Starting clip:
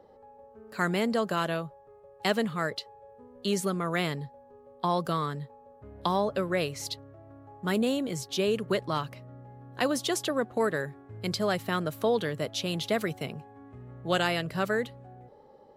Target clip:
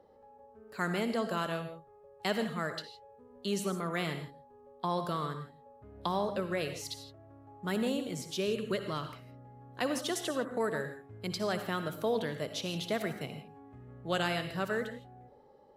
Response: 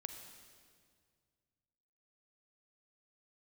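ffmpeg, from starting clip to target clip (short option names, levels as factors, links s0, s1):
-filter_complex "[0:a]asettb=1/sr,asplit=3[s0][s1][s2];[s0]atrim=end=8.304[s3];[s1]atrim=start=8.3:end=9.14,asetpts=PTS-STARTPTS,afade=t=in:d=0.004:c=qsin,afade=t=out:st=0.836:d=0.004:c=qsin,equalizer=f=840:t=o:w=0.48:g=-7[s4];[s2]atrim=start=9.136[s5];[s3][s4]acrossfade=d=0.004:c1=hsin:c2=qsin[s6];[s6][s5]acrossfade=d=0.004:c1=qsin:c2=hsin[s7];[1:a]atrim=start_sample=2205,afade=t=out:st=0.17:d=0.01,atrim=end_sample=7938,asetrate=31311,aresample=44100[s8];[s7][s8]afir=irnorm=-1:irlink=0,volume=0.708"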